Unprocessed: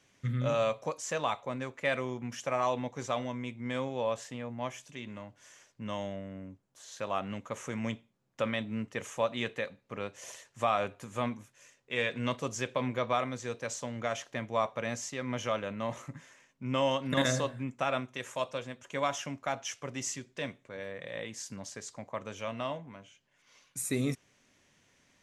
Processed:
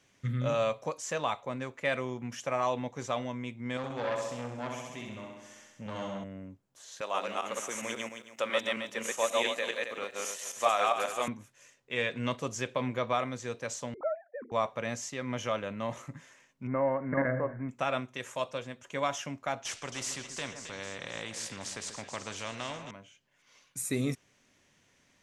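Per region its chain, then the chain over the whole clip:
0:03.77–0:06.24: flutter between parallel walls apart 11.3 metres, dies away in 1.1 s + saturating transformer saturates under 1,200 Hz
0:07.01–0:11.28: feedback delay that plays each chunk backwards 135 ms, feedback 43%, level 0 dB + high-pass filter 390 Hz + high-shelf EQ 4,800 Hz +11 dB
0:13.94–0:14.52: three sine waves on the formant tracks + inverse Chebyshev low-pass filter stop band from 2,800 Hz + mains-hum notches 60/120/180/240/300 Hz
0:16.67–0:17.69: mu-law and A-law mismatch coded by mu + Chebyshev low-pass with heavy ripple 2,200 Hz, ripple 3 dB
0:19.65–0:22.91: low-pass filter 9,100 Hz 24 dB per octave + echo with a time of its own for lows and highs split 1,700 Hz, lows 136 ms, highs 269 ms, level −15.5 dB + every bin compressed towards the loudest bin 2 to 1
whole clip: no processing

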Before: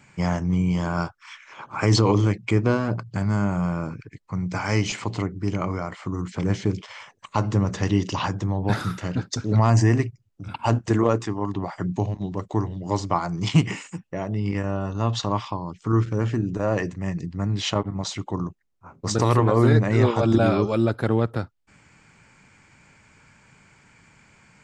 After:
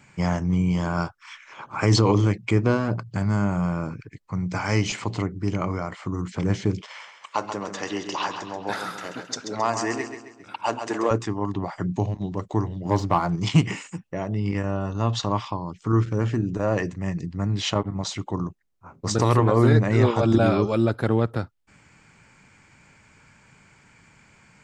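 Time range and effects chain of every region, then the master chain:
0:06.87–0:11.11: high-pass filter 430 Hz + repeating echo 134 ms, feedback 43%, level −8 dB
0:12.85–0:13.36: low-pass filter 2,500 Hz 6 dB per octave + leveller curve on the samples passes 1
whole clip: no processing

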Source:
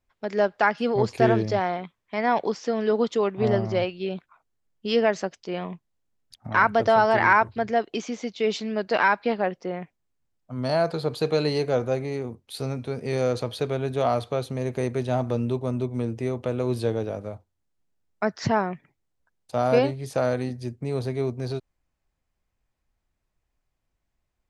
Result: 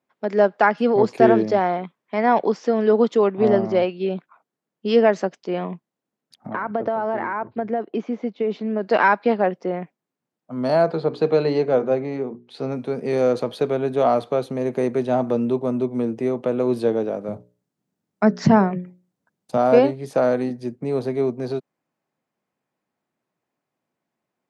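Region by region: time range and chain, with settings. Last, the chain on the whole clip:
0:06.49–0:08.83: downward compressor 12 to 1, threshold −21 dBFS + head-to-tape spacing loss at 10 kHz 30 dB
0:10.85–0:12.72: high-frequency loss of the air 110 metres + mains-hum notches 60/120/180/240/300/360/420 Hz
0:17.28–0:19.57: bass and treble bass +12 dB, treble +5 dB + mains-hum notches 60/120/180/240/300/360/420/480/540/600 Hz
whole clip: high-pass filter 170 Hz 24 dB per octave; high-shelf EQ 2,000 Hz −10.5 dB; level +6.5 dB

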